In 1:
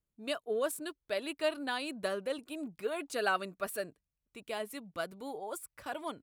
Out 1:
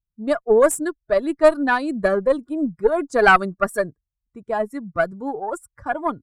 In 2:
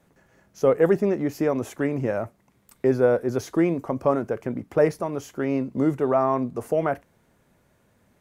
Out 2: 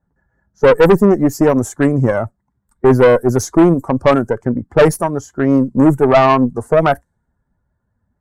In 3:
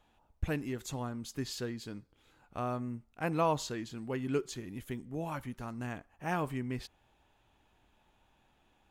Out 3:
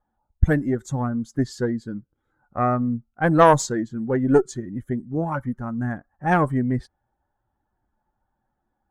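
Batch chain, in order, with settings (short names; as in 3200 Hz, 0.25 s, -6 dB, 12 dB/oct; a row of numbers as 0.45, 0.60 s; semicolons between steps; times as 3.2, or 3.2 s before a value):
per-bin expansion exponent 1.5; EQ curve 1700 Hz 0 dB, 2600 Hz -22 dB, 7600 Hz +9 dB; low-pass opened by the level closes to 1700 Hz, open at -23 dBFS; tube stage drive 23 dB, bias 0.55; normalise peaks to -1.5 dBFS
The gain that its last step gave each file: +22.0, +18.5, +20.0 dB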